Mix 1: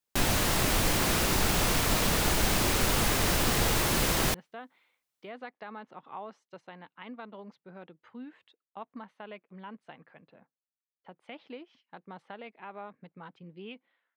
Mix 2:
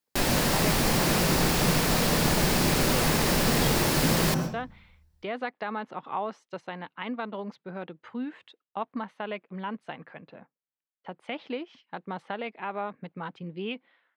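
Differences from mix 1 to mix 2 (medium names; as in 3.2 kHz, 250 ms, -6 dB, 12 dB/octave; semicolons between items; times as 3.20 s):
speech +10.0 dB; reverb: on, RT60 0.45 s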